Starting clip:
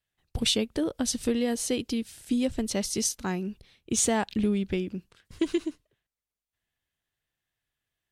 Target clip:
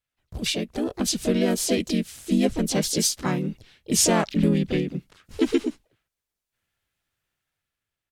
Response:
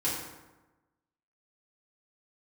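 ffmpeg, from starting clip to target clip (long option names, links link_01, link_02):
-filter_complex "[0:a]dynaudnorm=framelen=370:gausssize=5:maxgain=8dB,asplit=4[link_01][link_02][link_03][link_04];[link_02]asetrate=35002,aresample=44100,atempo=1.25992,volume=-2dB[link_05];[link_03]asetrate=52444,aresample=44100,atempo=0.840896,volume=-17dB[link_06];[link_04]asetrate=58866,aresample=44100,atempo=0.749154,volume=-7dB[link_07];[link_01][link_05][link_06][link_07]amix=inputs=4:normalize=0,volume=-5dB"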